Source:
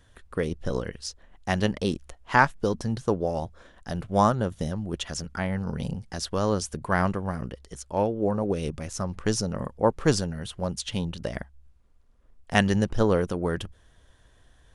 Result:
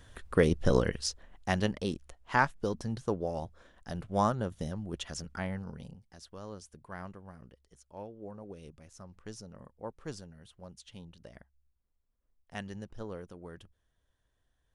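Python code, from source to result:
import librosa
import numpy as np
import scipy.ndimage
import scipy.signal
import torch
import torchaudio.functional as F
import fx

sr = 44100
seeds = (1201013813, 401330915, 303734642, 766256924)

y = fx.gain(x, sr, db=fx.line((0.93, 3.5), (1.78, -7.0), (5.48, -7.0), (6.01, -19.5)))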